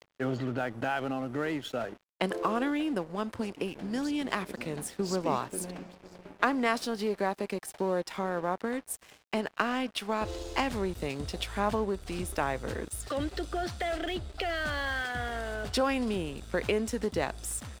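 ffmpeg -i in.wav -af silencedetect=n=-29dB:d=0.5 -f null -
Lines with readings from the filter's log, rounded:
silence_start: 5.70
silence_end: 6.42 | silence_duration: 0.72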